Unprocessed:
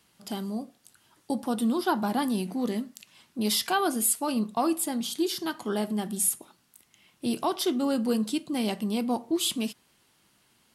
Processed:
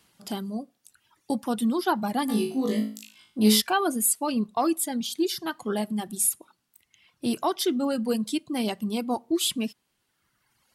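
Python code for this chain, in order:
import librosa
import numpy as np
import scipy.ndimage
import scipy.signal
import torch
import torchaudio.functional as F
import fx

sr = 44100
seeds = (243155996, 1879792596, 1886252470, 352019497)

y = fx.dereverb_blind(x, sr, rt60_s=1.6)
y = fx.room_flutter(y, sr, wall_m=3.2, rt60_s=0.41, at=(2.28, 3.6), fade=0.02)
y = y * librosa.db_to_amplitude(2.0)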